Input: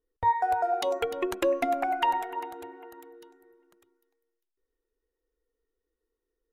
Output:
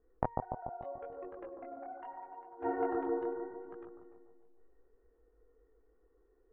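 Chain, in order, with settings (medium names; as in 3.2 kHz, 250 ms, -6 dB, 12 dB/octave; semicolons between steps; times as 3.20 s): low-pass 1.6 kHz 24 dB/octave; peaking EQ 750 Hz +4 dB 0.24 oct; band-stop 910 Hz, Q 18; compression, threshold -25 dBFS, peak gain reduction 6.5 dB; inverted gate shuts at -32 dBFS, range -30 dB; chorus voices 2, 0.79 Hz, delay 21 ms, depth 4.2 ms; bucket-brigade echo 145 ms, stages 1024, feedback 57%, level -3.5 dB; trim +15 dB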